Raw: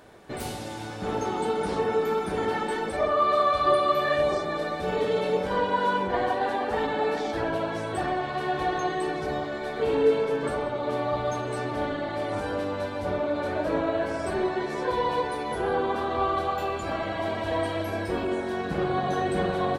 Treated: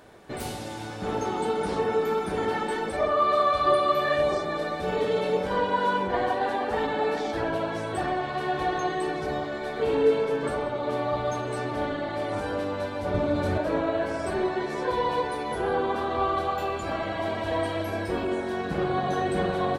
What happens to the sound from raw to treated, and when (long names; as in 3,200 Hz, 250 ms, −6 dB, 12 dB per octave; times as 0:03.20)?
0:13.14–0:13.58: bass and treble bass +12 dB, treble +6 dB